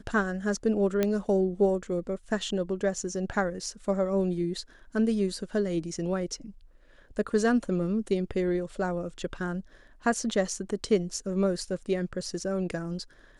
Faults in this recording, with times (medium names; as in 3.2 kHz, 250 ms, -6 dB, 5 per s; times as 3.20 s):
1.03 s: pop -12 dBFS